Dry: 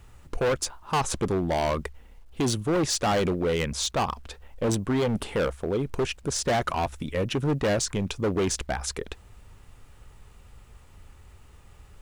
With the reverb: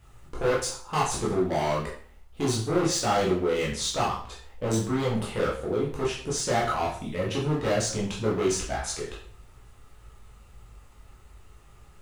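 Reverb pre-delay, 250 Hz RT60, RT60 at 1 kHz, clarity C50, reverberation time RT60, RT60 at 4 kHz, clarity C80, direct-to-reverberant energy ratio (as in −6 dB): 7 ms, 0.55 s, 0.50 s, 5.0 dB, 0.50 s, 0.45 s, 10.0 dB, −6.0 dB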